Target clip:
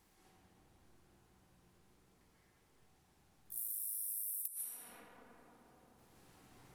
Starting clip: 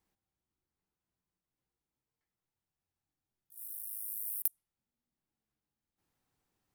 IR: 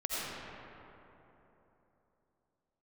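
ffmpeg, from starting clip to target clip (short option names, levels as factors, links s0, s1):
-filter_complex "[1:a]atrim=start_sample=2205,asetrate=25578,aresample=44100[s0];[0:a][s0]afir=irnorm=-1:irlink=0,acompressor=threshold=0.00316:ratio=12,volume=3.76"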